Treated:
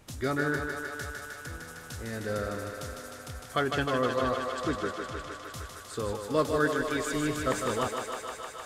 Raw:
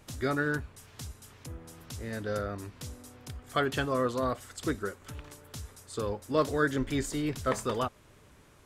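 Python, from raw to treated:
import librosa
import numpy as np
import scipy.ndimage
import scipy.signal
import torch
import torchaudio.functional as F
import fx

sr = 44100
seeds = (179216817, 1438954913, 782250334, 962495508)

y = fx.lowpass(x, sr, hz=6300.0, slope=12, at=(3.58, 5.42))
y = fx.low_shelf(y, sr, hz=220.0, db=-10.5, at=(6.68, 7.12))
y = fx.echo_thinned(y, sr, ms=154, feedback_pct=85, hz=300.0, wet_db=-5)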